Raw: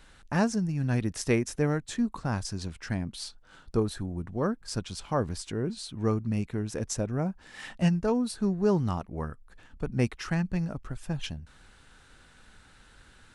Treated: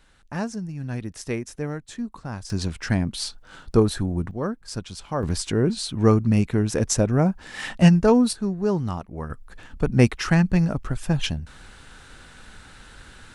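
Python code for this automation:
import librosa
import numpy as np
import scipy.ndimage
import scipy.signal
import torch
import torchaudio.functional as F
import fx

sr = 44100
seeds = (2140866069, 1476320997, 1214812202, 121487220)

y = fx.gain(x, sr, db=fx.steps((0.0, -3.0), (2.5, 9.0), (4.31, 1.0), (5.23, 10.0), (8.33, 1.5), (9.3, 10.0)))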